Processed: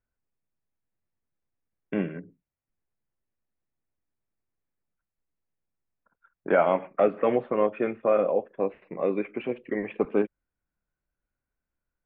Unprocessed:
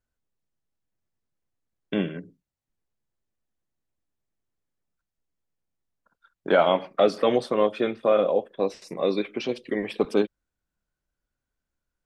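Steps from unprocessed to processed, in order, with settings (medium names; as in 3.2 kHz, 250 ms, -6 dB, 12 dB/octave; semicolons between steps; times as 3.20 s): steep low-pass 2.6 kHz 48 dB/octave; trim -2 dB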